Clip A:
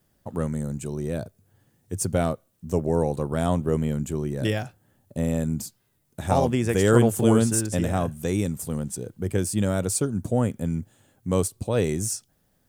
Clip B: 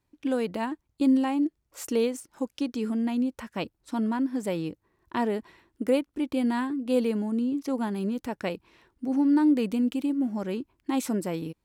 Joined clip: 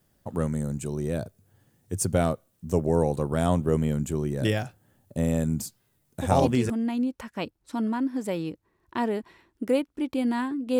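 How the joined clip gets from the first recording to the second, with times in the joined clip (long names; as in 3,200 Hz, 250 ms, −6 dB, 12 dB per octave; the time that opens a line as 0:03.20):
clip A
0:06.46: continue with clip B from 0:02.65, crossfade 0.48 s logarithmic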